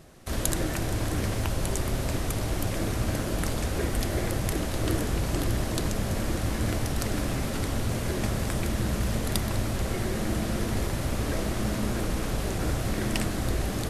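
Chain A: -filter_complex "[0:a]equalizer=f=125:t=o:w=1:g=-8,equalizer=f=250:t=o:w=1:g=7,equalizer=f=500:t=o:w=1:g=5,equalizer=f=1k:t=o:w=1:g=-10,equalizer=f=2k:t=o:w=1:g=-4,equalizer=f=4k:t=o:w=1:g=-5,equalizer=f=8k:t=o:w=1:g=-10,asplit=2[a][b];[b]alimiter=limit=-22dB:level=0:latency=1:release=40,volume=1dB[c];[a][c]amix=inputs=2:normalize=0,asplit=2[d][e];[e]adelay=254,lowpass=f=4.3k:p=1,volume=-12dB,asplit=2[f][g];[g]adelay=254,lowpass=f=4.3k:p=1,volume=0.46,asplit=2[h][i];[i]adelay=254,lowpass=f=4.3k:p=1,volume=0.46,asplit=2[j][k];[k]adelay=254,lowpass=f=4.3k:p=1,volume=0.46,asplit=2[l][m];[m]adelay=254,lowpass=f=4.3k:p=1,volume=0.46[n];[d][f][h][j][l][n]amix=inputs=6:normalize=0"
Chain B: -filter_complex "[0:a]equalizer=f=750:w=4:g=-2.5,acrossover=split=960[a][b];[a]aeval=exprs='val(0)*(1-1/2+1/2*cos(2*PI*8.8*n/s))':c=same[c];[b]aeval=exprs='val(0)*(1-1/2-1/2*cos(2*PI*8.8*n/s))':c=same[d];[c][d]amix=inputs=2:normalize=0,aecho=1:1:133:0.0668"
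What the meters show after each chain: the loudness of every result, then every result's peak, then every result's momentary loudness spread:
-23.5, -34.0 LUFS; -9.0, -10.5 dBFS; 2, 2 LU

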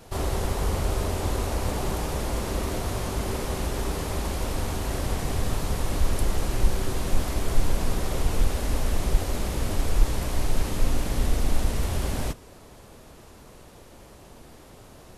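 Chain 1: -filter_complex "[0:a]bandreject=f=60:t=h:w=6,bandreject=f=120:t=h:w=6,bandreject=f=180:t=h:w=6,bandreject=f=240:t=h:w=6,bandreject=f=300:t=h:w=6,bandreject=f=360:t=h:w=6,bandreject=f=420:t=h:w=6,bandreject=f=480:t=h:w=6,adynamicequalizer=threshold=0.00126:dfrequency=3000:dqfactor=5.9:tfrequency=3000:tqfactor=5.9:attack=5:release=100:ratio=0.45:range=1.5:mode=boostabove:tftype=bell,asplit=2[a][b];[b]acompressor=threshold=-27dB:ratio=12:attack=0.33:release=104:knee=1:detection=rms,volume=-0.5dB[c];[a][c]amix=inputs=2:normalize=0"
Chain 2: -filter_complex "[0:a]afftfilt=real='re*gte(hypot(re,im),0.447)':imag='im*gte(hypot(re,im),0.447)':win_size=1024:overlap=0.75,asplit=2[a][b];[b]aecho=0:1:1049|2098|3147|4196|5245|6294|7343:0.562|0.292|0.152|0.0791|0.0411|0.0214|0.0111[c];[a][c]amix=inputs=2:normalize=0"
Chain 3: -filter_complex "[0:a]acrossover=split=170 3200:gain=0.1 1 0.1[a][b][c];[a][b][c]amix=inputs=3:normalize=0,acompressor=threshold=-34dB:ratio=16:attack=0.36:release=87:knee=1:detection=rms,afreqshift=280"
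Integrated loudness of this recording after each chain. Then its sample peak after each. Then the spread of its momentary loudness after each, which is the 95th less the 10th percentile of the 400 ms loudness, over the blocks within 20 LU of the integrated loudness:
-26.5, -33.0, -41.0 LUFS; -6.0, -8.0, -28.5 dBFS; 18, 11, 11 LU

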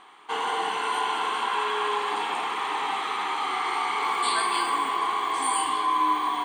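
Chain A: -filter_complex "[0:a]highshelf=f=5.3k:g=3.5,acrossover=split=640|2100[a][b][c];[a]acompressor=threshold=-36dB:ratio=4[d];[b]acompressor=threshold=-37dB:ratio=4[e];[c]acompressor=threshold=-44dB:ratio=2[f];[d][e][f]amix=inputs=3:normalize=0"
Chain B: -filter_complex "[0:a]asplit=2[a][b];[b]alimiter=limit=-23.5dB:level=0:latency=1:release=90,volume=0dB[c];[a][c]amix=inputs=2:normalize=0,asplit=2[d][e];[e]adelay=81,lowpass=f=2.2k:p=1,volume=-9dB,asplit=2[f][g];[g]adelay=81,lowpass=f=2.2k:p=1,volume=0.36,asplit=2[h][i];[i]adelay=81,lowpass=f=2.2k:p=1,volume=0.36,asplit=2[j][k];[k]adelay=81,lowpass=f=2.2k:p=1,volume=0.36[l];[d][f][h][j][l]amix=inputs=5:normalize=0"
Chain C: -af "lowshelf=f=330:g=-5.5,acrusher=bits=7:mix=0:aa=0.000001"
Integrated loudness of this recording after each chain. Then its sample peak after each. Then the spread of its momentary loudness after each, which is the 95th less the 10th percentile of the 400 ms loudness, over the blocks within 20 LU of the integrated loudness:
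-32.5, -22.0, -26.5 LUFS; -20.0, -9.0, -13.5 dBFS; 2, 3, 4 LU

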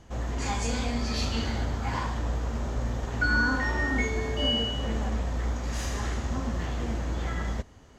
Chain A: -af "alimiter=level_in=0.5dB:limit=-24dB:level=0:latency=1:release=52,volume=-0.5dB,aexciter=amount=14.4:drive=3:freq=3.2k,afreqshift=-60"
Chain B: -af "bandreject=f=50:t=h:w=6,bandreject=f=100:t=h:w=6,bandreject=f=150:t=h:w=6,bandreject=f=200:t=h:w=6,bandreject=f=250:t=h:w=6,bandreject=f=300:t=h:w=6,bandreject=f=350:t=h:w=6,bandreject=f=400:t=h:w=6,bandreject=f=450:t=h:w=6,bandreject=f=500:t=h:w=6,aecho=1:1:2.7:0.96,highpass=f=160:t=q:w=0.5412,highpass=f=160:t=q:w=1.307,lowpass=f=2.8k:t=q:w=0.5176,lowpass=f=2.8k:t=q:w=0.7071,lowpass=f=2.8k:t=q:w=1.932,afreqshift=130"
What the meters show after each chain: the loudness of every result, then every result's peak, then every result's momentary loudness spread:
-23.5, -28.0 LUFS; -6.5, -11.5 dBFS; 11, 15 LU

